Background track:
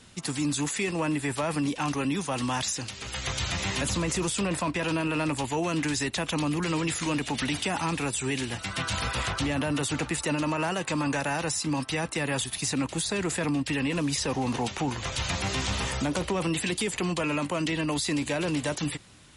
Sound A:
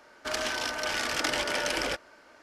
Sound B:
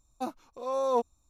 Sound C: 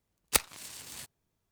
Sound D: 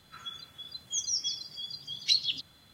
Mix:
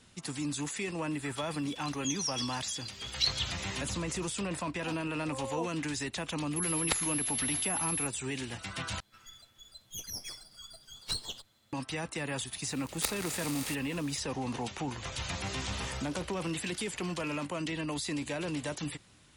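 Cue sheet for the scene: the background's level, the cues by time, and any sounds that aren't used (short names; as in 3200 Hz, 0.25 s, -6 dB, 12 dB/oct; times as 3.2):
background track -7 dB
1.12 add D -4 dB
4.65 add B -11.5 dB
6.56 add C -3 dB + pulse-width modulation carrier 11000 Hz
9 replace with D -8 dB + minimum comb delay 9.1 ms
12.69 add C -9 dB + per-bin compression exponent 0.4
15.5 add A -13.5 dB + passive tone stack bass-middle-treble 5-5-5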